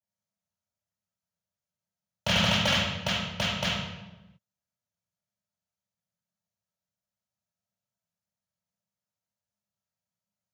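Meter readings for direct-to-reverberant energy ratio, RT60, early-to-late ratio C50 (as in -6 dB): -17.5 dB, 1.1 s, -0.5 dB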